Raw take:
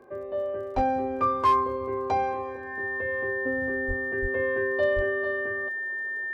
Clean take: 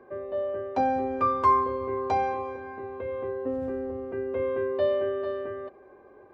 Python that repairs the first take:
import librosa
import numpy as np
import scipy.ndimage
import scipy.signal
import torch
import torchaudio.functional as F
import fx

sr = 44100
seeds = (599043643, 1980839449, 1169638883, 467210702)

y = fx.fix_declip(x, sr, threshold_db=-15.5)
y = fx.fix_declick_ar(y, sr, threshold=6.5)
y = fx.notch(y, sr, hz=1800.0, q=30.0)
y = fx.fix_deplosive(y, sr, at_s=(0.75, 3.87, 4.21, 4.95))